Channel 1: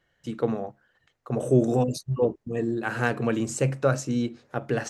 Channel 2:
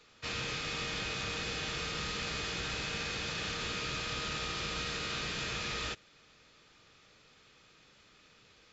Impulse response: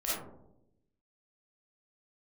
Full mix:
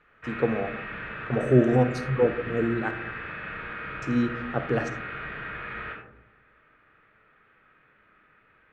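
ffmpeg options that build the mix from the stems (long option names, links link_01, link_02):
-filter_complex "[0:a]tremolo=f=5:d=0.29,volume=0.5dB,asplit=3[link_01][link_02][link_03];[link_01]atrim=end=2.91,asetpts=PTS-STARTPTS,afade=type=out:start_time=2.906:duration=0.004:curve=hsin[link_04];[link_02]atrim=start=2.91:end=4.02,asetpts=PTS-STARTPTS,volume=0[link_05];[link_03]atrim=start=4.02,asetpts=PTS-STARTPTS,afade=type=in:duration=0.004:curve=hsin[link_06];[link_04][link_05][link_06]concat=n=3:v=0:a=1,asplit=2[link_07][link_08];[link_08]volume=-14.5dB[link_09];[1:a]lowpass=frequency=2600:width=0.5412,lowpass=frequency=2600:width=1.3066,equalizer=frequency=1600:width=1.4:gain=13,volume=-8dB,asplit=2[link_10][link_11];[link_11]volume=-4dB[link_12];[2:a]atrim=start_sample=2205[link_13];[link_09][link_12]amix=inputs=2:normalize=0[link_14];[link_14][link_13]afir=irnorm=-1:irlink=0[link_15];[link_07][link_10][link_15]amix=inputs=3:normalize=0,aemphasis=mode=reproduction:type=75fm"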